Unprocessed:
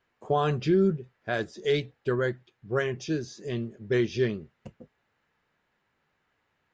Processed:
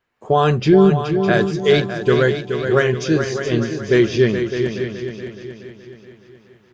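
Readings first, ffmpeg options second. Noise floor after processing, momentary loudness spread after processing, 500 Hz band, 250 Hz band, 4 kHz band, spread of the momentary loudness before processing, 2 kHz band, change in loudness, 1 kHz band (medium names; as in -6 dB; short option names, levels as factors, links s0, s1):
-53 dBFS, 14 LU, +12.0 dB, +12.0 dB, +12.0 dB, 10 LU, +12.0 dB, +11.0 dB, +11.5 dB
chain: -filter_complex "[0:a]asplit=2[s0][s1];[s1]aecho=0:1:608:0.299[s2];[s0][s2]amix=inputs=2:normalize=0,dynaudnorm=f=100:g=5:m=3.76,asplit=2[s3][s4];[s4]aecho=0:1:423|846|1269|1692|2115|2538:0.398|0.199|0.0995|0.0498|0.0249|0.0124[s5];[s3][s5]amix=inputs=2:normalize=0"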